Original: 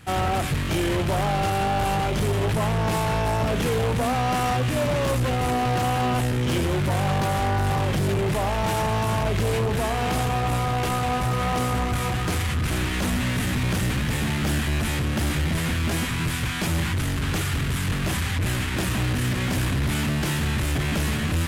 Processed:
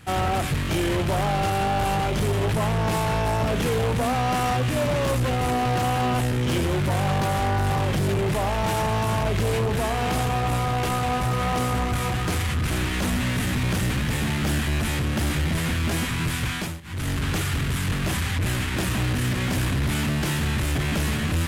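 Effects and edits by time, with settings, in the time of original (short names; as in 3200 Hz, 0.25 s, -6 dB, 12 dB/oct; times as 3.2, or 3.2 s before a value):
16.54–17.1 dip -22.5 dB, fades 0.27 s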